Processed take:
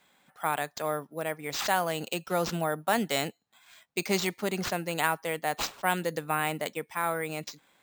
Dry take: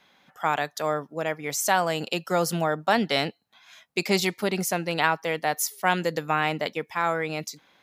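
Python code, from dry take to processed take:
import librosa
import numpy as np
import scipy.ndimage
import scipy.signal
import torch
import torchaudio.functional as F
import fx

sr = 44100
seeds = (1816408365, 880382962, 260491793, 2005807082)

y = np.repeat(x[::4], 4)[:len(x)]
y = y * librosa.db_to_amplitude(-4.5)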